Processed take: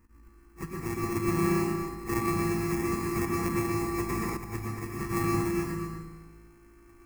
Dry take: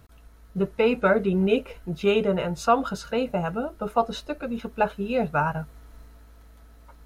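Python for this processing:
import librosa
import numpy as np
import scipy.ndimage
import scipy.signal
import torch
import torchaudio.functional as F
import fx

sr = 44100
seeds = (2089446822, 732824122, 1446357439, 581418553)

y = np.r_[np.sort(x[:len(x) // 128 * 128].reshape(-1, 128), axis=1).ravel(), x[len(x) // 128 * 128:]]
y = fx.rider(y, sr, range_db=3, speed_s=0.5)
y = fx.auto_swell(y, sr, attack_ms=118.0)
y = fx.env_flanger(y, sr, rest_ms=3.9, full_db=-21.5)
y = fx.sample_hold(y, sr, seeds[0], rate_hz=1500.0, jitter_pct=0)
y = fx.fixed_phaser(y, sr, hz=1500.0, stages=4)
y = fx.comb_fb(y, sr, f0_hz=54.0, decay_s=1.2, harmonics='all', damping=0.0, mix_pct=70)
y = y + 10.0 ** (-8.0 / 20.0) * np.pad(y, (int(235 * sr / 1000.0), 0))[:len(y)]
y = fx.rev_plate(y, sr, seeds[1], rt60_s=0.74, hf_ratio=0.75, predelay_ms=95, drr_db=-1.5)
y = fx.band_squash(y, sr, depth_pct=100, at=(2.09, 4.37))
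y = F.gain(torch.from_numpy(y), 6.5).numpy()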